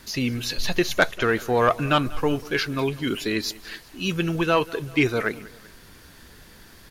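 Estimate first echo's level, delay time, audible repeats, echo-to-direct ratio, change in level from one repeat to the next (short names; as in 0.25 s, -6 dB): -21.0 dB, 0.193 s, 2, -20.0 dB, -5.5 dB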